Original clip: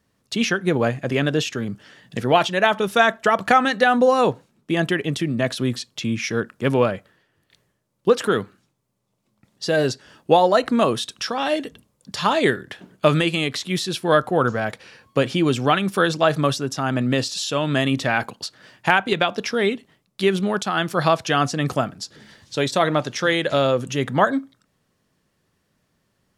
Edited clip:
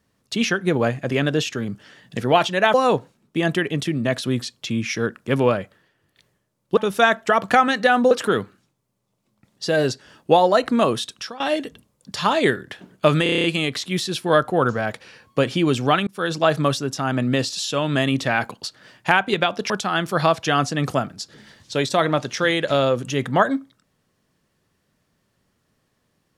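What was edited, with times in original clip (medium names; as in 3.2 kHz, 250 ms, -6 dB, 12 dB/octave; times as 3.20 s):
2.74–4.08 s: move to 8.11 s
10.92–11.40 s: fade out equal-power, to -17.5 dB
13.23 s: stutter 0.03 s, 8 plays
15.86–16.18 s: fade in
19.49–20.52 s: delete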